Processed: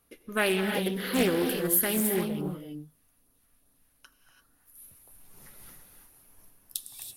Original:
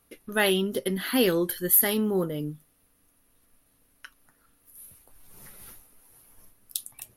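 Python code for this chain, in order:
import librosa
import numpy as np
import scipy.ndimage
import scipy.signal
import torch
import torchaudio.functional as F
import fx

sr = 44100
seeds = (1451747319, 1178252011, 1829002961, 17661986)

y = fx.filter_lfo_notch(x, sr, shape='sine', hz=2.5, low_hz=260.0, high_hz=2700.0, q=0.88, at=(2.0, 4.82))
y = fx.rev_gated(y, sr, seeds[0], gate_ms=360, shape='rising', drr_db=4.0)
y = fx.doppler_dist(y, sr, depth_ms=0.36)
y = y * 10.0 ** (-3.0 / 20.0)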